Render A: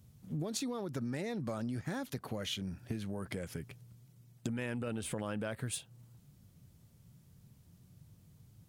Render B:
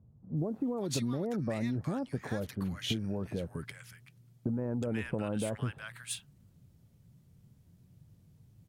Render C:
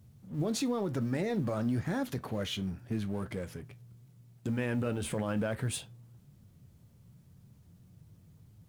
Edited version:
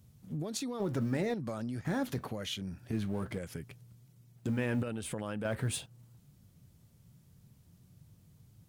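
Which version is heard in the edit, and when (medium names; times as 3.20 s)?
A
0.80–1.34 s: from C
1.85–2.28 s: from C
2.93–3.38 s: from C
4.36–4.83 s: from C
5.45–5.86 s: from C
not used: B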